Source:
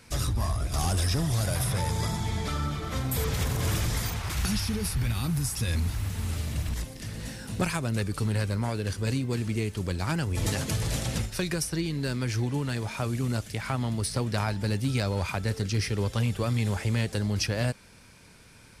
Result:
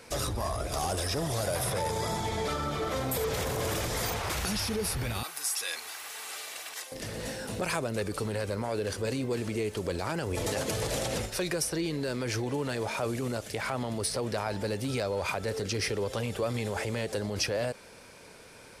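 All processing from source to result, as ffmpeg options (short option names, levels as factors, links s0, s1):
-filter_complex "[0:a]asettb=1/sr,asplit=3[s0][s1][s2];[s0]atrim=end=5.234[s3];[s1]atrim=start=5.23:end=6.92,asetpts=PTS-STARTPTS,afade=t=in:d=0.004:c=qsin,afade=t=out:st=1.686:d=0.004:c=qsin,highpass=1100,aecho=1:1:2.6:0.32,atrim=end_sample=74529[s4];[s2]atrim=start=6.916[s5];[s3][s4]acrossfade=d=0.004:c1=hsin:c2=qsin[s6];[s6][s5]acrossfade=d=0.004:c1=qsin:c2=hsin,equalizer=f=500:w=0.89:g=11.5,alimiter=limit=0.0944:level=0:latency=1:release=46,lowshelf=f=390:g=-8.5,volume=1.26"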